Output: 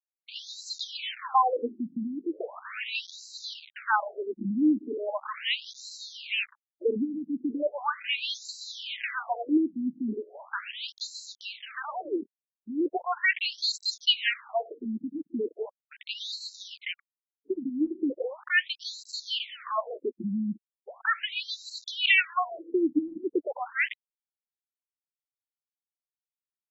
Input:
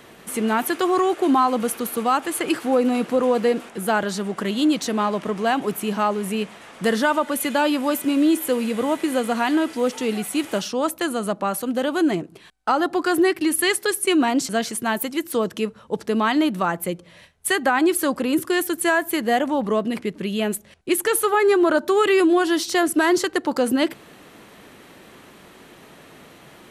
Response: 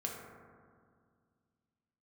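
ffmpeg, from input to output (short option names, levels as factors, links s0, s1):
-filter_complex "[0:a]agate=range=0.0224:threshold=0.02:ratio=3:detection=peak,firequalizer=gain_entry='entry(720,0);entry(2300,10);entry(10000,-3)':delay=0.05:min_phase=1,asplit=2[s0][s1];[1:a]atrim=start_sample=2205,afade=t=out:st=0.21:d=0.01,atrim=end_sample=9702,adelay=36[s2];[s1][s2]afir=irnorm=-1:irlink=0,volume=0.075[s3];[s0][s3]amix=inputs=2:normalize=0,aeval=exprs='val(0)*gte(abs(val(0)),0.0355)':c=same,afftfilt=real='re*between(b*sr/1024,220*pow(5500/220,0.5+0.5*sin(2*PI*0.38*pts/sr))/1.41,220*pow(5500/220,0.5+0.5*sin(2*PI*0.38*pts/sr))*1.41)':imag='im*between(b*sr/1024,220*pow(5500/220,0.5+0.5*sin(2*PI*0.38*pts/sr))/1.41,220*pow(5500/220,0.5+0.5*sin(2*PI*0.38*pts/sr))*1.41)':win_size=1024:overlap=0.75,volume=0.75"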